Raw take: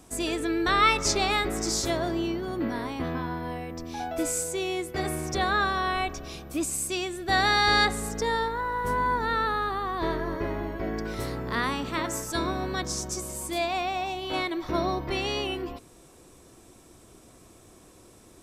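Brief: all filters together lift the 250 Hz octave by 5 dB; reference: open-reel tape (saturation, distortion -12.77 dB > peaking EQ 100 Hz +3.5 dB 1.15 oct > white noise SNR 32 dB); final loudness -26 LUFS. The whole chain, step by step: peaking EQ 250 Hz +6.5 dB; saturation -22 dBFS; peaking EQ 100 Hz +3.5 dB 1.15 oct; white noise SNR 32 dB; trim +2.5 dB

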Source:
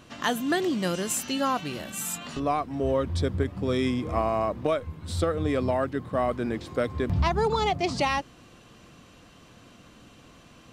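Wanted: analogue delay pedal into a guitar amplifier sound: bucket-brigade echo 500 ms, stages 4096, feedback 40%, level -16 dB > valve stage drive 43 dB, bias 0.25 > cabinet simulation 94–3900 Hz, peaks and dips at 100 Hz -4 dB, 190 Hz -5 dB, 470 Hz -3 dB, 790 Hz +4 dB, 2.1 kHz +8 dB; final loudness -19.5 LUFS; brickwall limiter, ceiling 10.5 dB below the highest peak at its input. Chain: peak limiter -20.5 dBFS; bucket-brigade echo 500 ms, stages 4096, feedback 40%, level -16 dB; valve stage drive 43 dB, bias 0.25; cabinet simulation 94–3900 Hz, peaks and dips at 100 Hz -4 dB, 190 Hz -5 dB, 470 Hz -3 dB, 790 Hz +4 dB, 2.1 kHz +8 dB; trim +26 dB

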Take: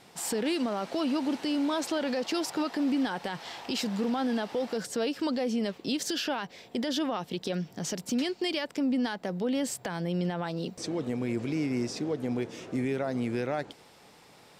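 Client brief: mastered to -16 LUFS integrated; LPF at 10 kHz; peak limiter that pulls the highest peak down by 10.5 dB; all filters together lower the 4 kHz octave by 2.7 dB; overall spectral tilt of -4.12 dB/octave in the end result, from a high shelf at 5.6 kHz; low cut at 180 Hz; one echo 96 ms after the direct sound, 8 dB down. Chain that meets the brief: high-pass 180 Hz; low-pass 10 kHz; peaking EQ 4 kHz -7 dB; treble shelf 5.6 kHz +8 dB; peak limiter -30 dBFS; delay 96 ms -8 dB; trim +21.5 dB

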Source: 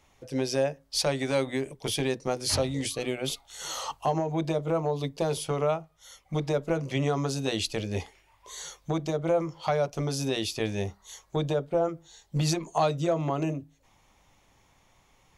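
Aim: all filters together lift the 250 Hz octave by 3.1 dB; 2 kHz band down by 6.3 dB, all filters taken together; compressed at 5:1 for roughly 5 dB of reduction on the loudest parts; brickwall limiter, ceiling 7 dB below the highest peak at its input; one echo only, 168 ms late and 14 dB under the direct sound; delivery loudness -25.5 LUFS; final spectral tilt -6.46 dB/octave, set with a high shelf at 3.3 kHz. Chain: peaking EQ 250 Hz +4.5 dB; peaking EQ 2 kHz -5.5 dB; treble shelf 3.3 kHz -8 dB; compression 5:1, threshold -26 dBFS; peak limiter -23 dBFS; delay 168 ms -14 dB; trim +8.5 dB

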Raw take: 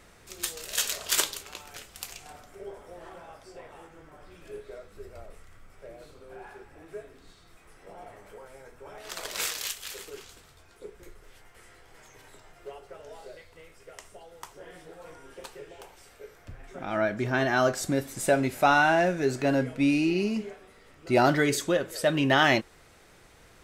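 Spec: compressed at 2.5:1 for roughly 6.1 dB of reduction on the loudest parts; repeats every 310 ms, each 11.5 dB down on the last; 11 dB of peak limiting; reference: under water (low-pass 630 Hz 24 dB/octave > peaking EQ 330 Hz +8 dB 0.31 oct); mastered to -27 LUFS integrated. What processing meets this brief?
compression 2.5:1, threshold -26 dBFS; peak limiter -21 dBFS; low-pass 630 Hz 24 dB/octave; peaking EQ 330 Hz +8 dB 0.31 oct; feedback delay 310 ms, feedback 27%, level -11.5 dB; trim +5 dB

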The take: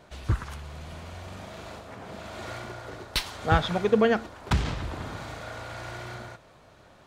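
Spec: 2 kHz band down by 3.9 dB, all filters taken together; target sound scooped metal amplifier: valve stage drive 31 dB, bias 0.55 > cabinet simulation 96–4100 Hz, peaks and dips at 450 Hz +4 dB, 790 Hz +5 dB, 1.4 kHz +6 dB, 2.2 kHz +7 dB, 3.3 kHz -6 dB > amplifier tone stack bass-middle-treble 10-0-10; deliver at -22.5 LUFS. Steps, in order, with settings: peaking EQ 2 kHz -4.5 dB; valve stage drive 31 dB, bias 0.55; cabinet simulation 96–4100 Hz, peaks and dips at 450 Hz +4 dB, 790 Hz +5 dB, 1.4 kHz +6 dB, 2.2 kHz +7 dB, 3.3 kHz -6 dB; amplifier tone stack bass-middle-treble 10-0-10; trim +25 dB

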